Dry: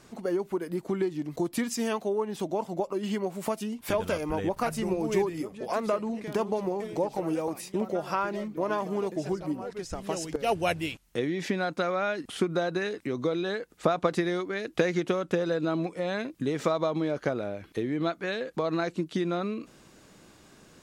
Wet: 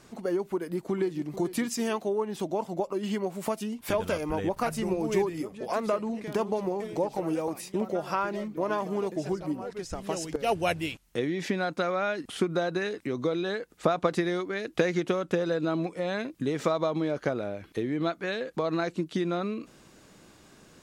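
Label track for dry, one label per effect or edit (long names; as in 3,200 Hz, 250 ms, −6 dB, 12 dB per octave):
0.530000	1.240000	delay throw 440 ms, feedback 35%, level −14 dB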